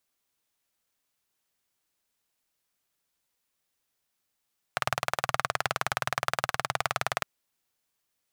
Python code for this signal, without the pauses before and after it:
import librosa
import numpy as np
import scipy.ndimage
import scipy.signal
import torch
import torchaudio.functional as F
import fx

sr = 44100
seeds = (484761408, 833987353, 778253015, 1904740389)

y = fx.engine_single(sr, seeds[0], length_s=2.46, rpm=2300, resonances_hz=(130.0, 740.0, 1200.0))